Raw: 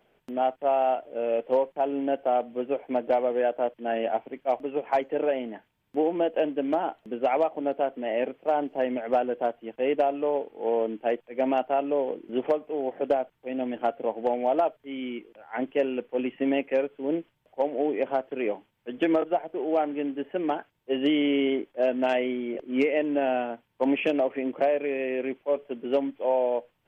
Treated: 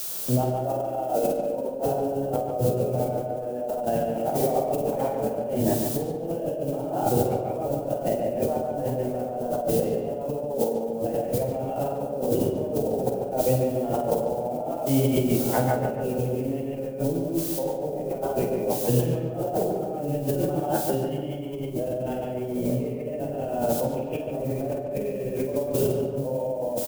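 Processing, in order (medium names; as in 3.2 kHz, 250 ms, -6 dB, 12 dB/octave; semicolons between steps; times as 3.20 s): octave divider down 1 oct, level +1 dB; gated-style reverb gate 200 ms rising, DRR -7 dB; added noise blue -37 dBFS; graphic EQ 125/500/2000 Hz +4/+8/-8 dB; compressor with a negative ratio -24 dBFS, ratio -1; peaking EQ 360 Hz -2.5 dB 0.38 oct; doubling 48 ms -9 dB; on a send: filtered feedback delay 144 ms, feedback 57%, low-pass 2.6 kHz, level -5 dB; on the sum: trim -5 dB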